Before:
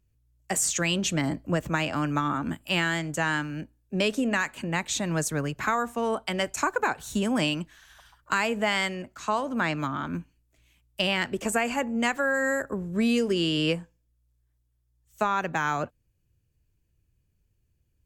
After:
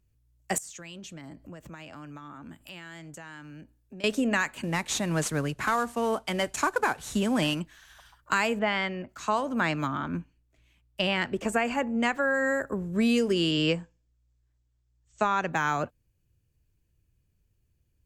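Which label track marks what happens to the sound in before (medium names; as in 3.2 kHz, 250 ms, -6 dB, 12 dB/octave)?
0.580000	4.040000	compression 4:1, threshold -44 dBFS
4.630000	7.600000	CVSD coder 64 kbps
8.590000	9.090000	distance through air 220 m
9.980000	12.620000	low-pass 3.5 kHz 6 dB/octave
13.510000	15.520000	steep low-pass 8.2 kHz 96 dB/octave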